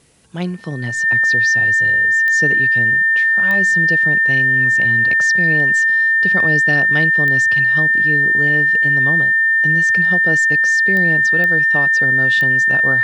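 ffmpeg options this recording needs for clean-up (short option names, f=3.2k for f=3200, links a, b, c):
-af "adeclick=t=4,bandreject=f=1.8k:w=30,agate=range=-21dB:threshold=-6dB"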